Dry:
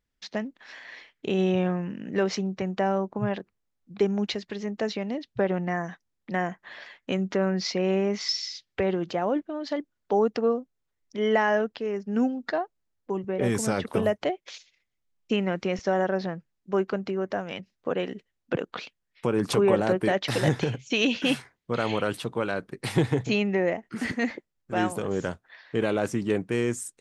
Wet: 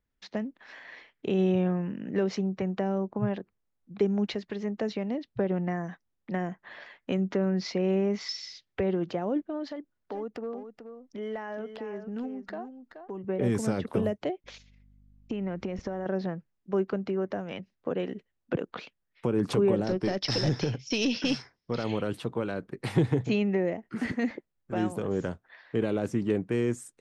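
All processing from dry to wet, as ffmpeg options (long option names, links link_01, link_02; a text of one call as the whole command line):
ffmpeg -i in.wav -filter_complex "[0:a]asettb=1/sr,asplit=3[link_01][link_02][link_03];[link_01]atrim=end=9.694[link_04];[link_02]atrim=start=9.69:end=13.25,asetpts=PTS-STARTPTS,afade=type=in:duration=0.004:curve=qsin,afade=type=out:start_time=3.556:duration=0.004:curve=qsin,acompressor=threshold=-37dB:ratio=2.5:attack=3.2:release=140:knee=1:detection=peak,aeval=exprs='clip(val(0),-1,0.0299)':channel_layout=same,aecho=1:1:427:0.335,atrim=end_sample=156996[link_05];[link_03]atrim=start=13.246[link_06];[link_04][link_05]acrossfade=duration=0.004:curve1=hsin:curve2=qsin[link_07];[link_07][link_06]acrossfade=duration=0.004:curve1=qsin:curve2=hsin,asettb=1/sr,asplit=3[link_08][link_09][link_10];[link_08]atrim=end=14.444[link_11];[link_09]atrim=start=14.44:end=16.06,asetpts=PTS-STARTPTS,afade=type=in:duration=0.004:curve=qsin,afade=type=out:start_time=1.616:duration=0.004:curve=qsin,lowshelf=frequency=430:gain=7,acompressor=threshold=-28dB:ratio=12:attack=3.2:release=140:knee=1:detection=peak,aeval=exprs='val(0)+0.00141*(sin(2*PI*50*n/s)+sin(2*PI*2*50*n/s)/2+sin(2*PI*3*50*n/s)/3+sin(2*PI*4*50*n/s)/4+sin(2*PI*5*50*n/s)/5)':channel_layout=same[link_12];[link_10]atrim=start=16.056[link_13];[link_11][link_12]acrossfade=duration=0.004:curve1=hsin:curve2=qsin[link_14];[link_14][link_13]acrossfade=duration=0.004:curve1=qsin:curve2=hsin,asettb=1/sr,asplit=3[link_15][link_16][link_17];[link_15]atrim=end=19.844[link_18];[link_16]atrim=start=19.84:end=21.84,asetpts=PTS-STARTPTS,afade=type=in:duration=0.004:curve=qsin,afade=type=out:start_time=1.996:duration=0.004:curve=qsin,aeval=exprs='(tanh(7.08*val(0)+0.25)-tanh(0.25))/7.08':channel_layout=same,lowpass=frequency=5300:width_type=q:width=15[link_19];[link_17]atrim=start=21.836[link_20];[link_18][link_19]acrossfade=duration=0.004:curve1=hsin:curve2=qsin[link_21];[link_21][link_20]acrossfade=duration=0.004:curve1=qsin:curve2=hsin,highshelf=frequency=3100:gain=-10.5,acrossover=split=450|3000[link_22][link_23][link_24];[link_23]acompressor=threshold=-35dB:ratio=6[link_25];[link_22][link_25][link_24]amix=inputs=3:normalize=0" out.wav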